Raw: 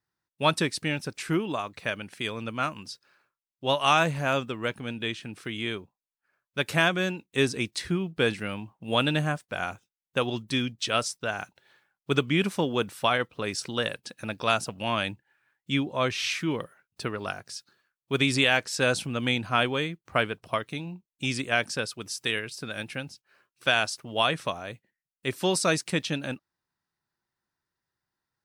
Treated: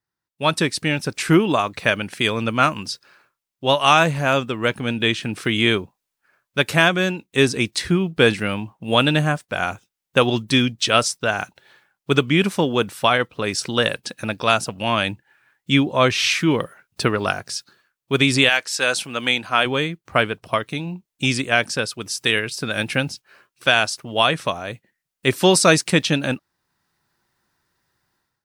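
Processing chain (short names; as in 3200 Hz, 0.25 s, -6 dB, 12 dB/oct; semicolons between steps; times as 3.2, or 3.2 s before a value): 18.48–19.65 HPF 1300 Hz -> 450 Hz 6 dB/oct; AGC gain up to 16.5 dB; gain -1 dB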